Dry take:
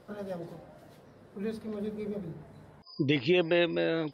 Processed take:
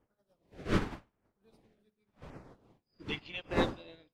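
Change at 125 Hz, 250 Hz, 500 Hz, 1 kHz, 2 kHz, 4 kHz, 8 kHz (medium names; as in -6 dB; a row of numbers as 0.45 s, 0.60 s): -4.0 dB, -7.5 dB, -9.5 dB, +1.5 dB, -6.0 dB, -6.5 dB, no reading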